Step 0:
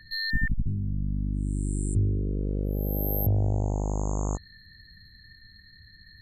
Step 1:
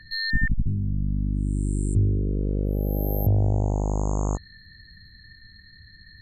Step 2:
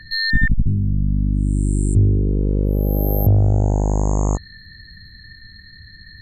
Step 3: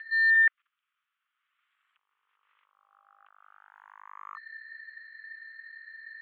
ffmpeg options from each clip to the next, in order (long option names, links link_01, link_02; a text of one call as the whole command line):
ffmpeg -i in.wav -af "highshelf=frequency=9300:gain=-11,volume=3.5dB" out.wav
ffmpeg -i in.wav -af "acontrast=85" out.wav
ffmpeg -i in.wav -af "asuperpass=centerf=2000:order=12:qfactor=0.92,volume=1dB" out.wav